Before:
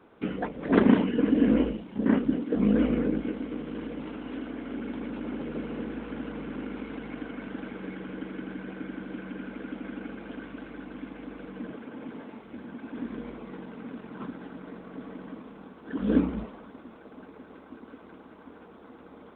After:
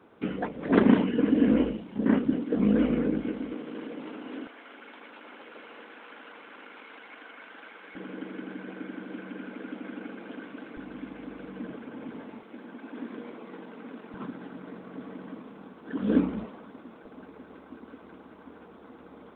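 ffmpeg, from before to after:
-af "asetnsamples=n=441:p=0,asendcmd='3.53 highpass f 260;4.47 highpass f 860;7.95 highpass f 210;10.77 highpass f 63;12.43 highpass f 260;14.14 highpass f 100;17.05 highpass f 49',highpass=66"

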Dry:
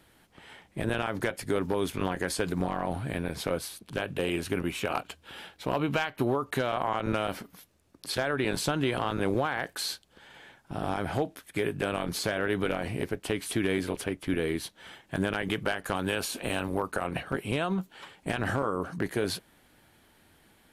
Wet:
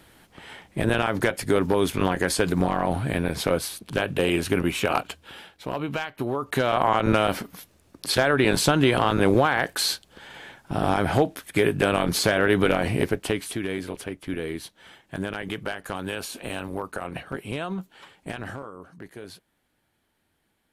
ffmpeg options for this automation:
-af "volume=16.5dB,afade=t=out:st=5.04:d=0.41:silence=0.398107,afade=t=in:st=6.3:d=0.53:silence=0.334965,afade=t=out:st=13.05:d=0.52:silence=0.316228,afade=t=out:st=18.19:d=0.52:silence=0.316228"

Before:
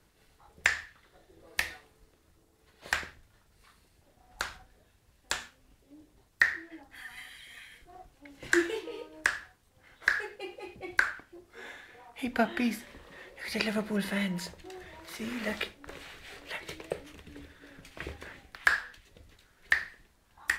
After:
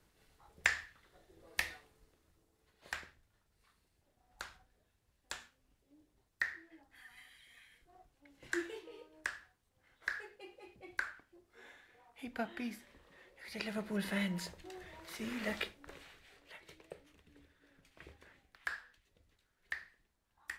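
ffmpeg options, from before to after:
-af "volume=2.5dB,afade=t=out:st=1.74:d=1.19:silence=0.446684,afade=t=in:st=13.55:d=0.6:silence=0.421697,afade=t=out:st=15.61:d=0.7:silence=0.281838"

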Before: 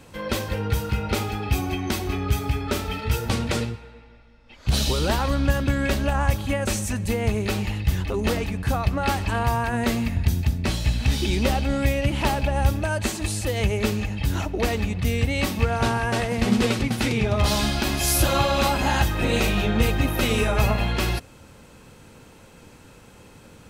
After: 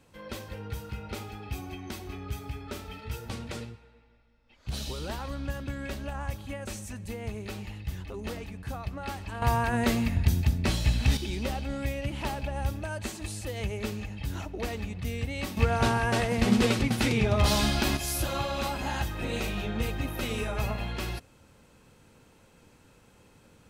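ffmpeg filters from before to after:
-af "asetnsamples=n=441:p=0,asendcmd='9.42 volume volume -2.5dB;11.17 volume volume -10dB;15.57 volume volume -2.5dB;17.97 volume volume -10dB',volume=-13dB"

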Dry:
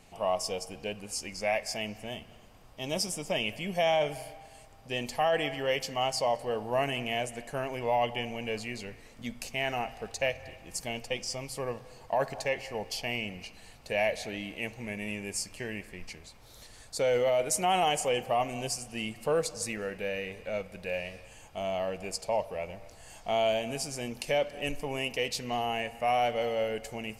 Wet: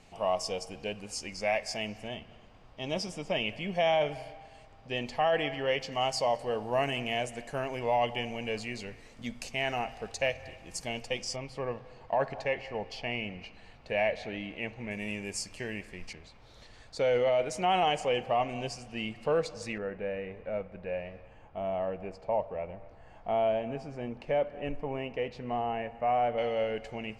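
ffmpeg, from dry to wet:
-af "asetnsamples=n=441:p=0,asendcmd='2.08 lowpass f 4100;5.92 lowpass f 8100;11.36 lowpass f 3100;14.91 lowpass f 7900;16.13 lowpass f 3900;19.78 lowpass f 1500;26.38 lowpass f 3300',lowpass=7.2k"

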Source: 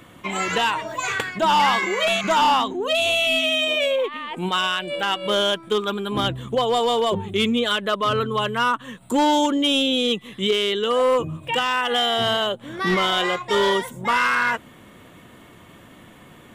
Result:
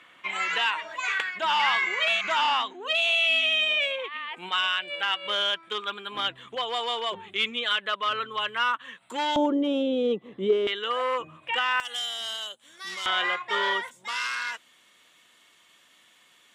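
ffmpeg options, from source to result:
-af "asetnsamples=n=441:p=0,asendcmd='9.36 bandpass f 450;10.67 bandpass f 1800;11.8 bandpass f 7400;13.06 bandpass f 1800;13.91 bandpass f 5100',bandpass=f=2.2k:t=q:w=1.1:csg=0"

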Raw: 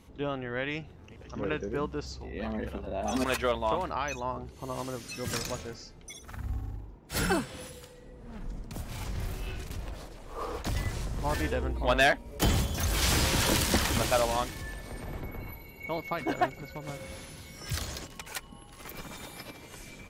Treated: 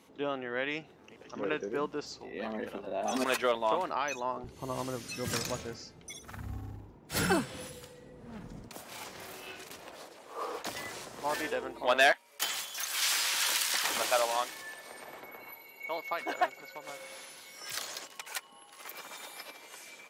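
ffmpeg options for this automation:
-af "asetnsamples=n=441:p=0,asendcmd='4.44 highpass f 96;8.68 highpass f 400;12.12 highpass f 1300;13.84 highpass f 580',highpass=270"

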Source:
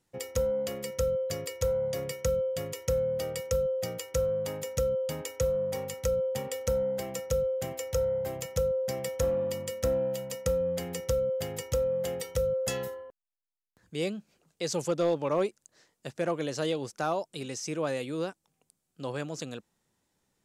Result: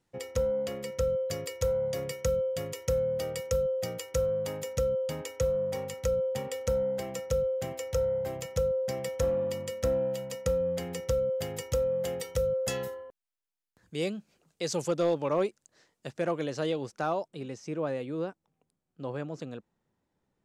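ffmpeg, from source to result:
-af "asetnsamples=n=441:p=0,asendcmd='1.1 lowpass f 11000;4.73 lowpass f 6300;11.39 lowpass f 12000;15.26 lowpass f 5800;16.44 lowpass f 3200;17.28 lowpass f 1200',lowpass=f=4.5k:p=1"

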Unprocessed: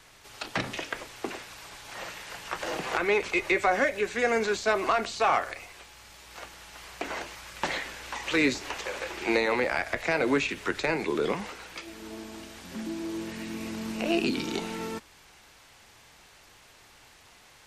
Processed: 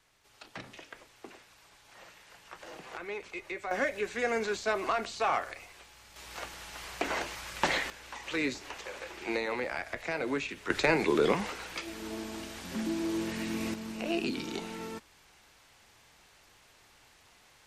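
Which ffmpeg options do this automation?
-af "asetnsamples=n=441:p=0,asendcmd='3.71 volume volume -5dB;6.16 volume volume 2dB;7.9 volume volume -7.5dB;10.7 volume volume 2dB;13.74 volume volume -5.5dB',volume=-14dB"

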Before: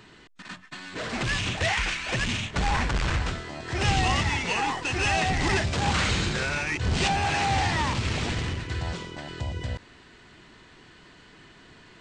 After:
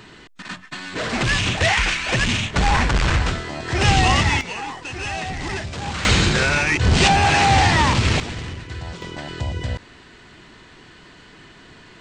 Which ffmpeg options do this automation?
-af "asetnsamples=n=441:p=0,asendcmd='4.41 volume volume -3dB;6.05 volume volume 9.5dB;8.2 volume volume -1dB;9.02 volume volume 6dB',volume=7.5dB"

